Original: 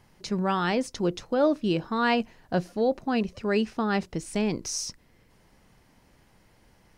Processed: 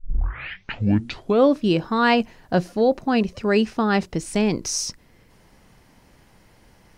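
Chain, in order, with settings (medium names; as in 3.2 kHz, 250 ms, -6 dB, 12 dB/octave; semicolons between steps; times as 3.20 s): tape start-up on the opening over 1.59 s; trim +6 dB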